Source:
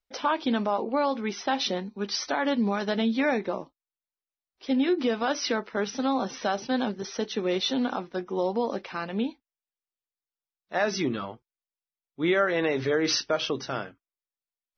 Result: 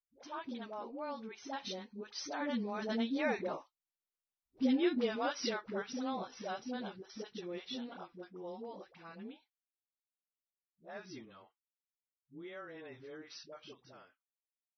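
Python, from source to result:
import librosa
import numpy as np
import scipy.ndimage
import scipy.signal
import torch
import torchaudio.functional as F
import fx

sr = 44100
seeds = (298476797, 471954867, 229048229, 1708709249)

y = fx.doppler_pass(x, sr, speed_mps=10, closest_m=9.3, pass_at_s=4.21)
y = fx.dispersion(y, sr, late='highs', ms=98.0, hz=450.0)
y = F.gain(torch.from_numpy(y), -5.0).numpy()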